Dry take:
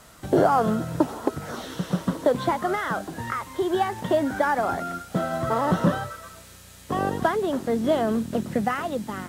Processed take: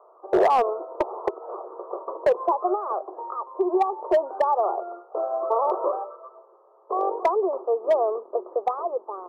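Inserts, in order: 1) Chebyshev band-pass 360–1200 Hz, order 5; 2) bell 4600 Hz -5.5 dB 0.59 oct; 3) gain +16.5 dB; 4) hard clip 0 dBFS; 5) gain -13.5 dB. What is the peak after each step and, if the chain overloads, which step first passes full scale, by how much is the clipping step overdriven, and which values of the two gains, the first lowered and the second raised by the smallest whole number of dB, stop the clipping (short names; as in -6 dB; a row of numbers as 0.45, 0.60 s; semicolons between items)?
-9.0, -9.0, +7.5, 0.0, -13.5 dBFS; step 3, 7.5 dB; step 3 +8.5 dB, step 5 -5.5 dB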